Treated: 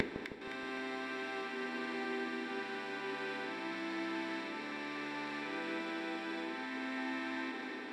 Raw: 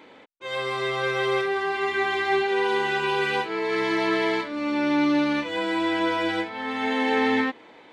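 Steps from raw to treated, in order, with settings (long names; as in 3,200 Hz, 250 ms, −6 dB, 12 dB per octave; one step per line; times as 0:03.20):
compressor on every frequency bin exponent 0.2
high-pass filter 250 Hz 12 dB per octave
low-shelf EQ 400 Hz +10.5 dB
noise gate with hold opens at −13 dBFS
automatic gain control
gate with flip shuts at −36 dBFS, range −39 dB
echo with a time of its own for lows and highs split 980 Hz, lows 157 ms, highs 257 ms, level −7 dB
convolution reverb RT60 0.65 s, pre-delay 3 ms, DRR 8.5 dB
level +12 dB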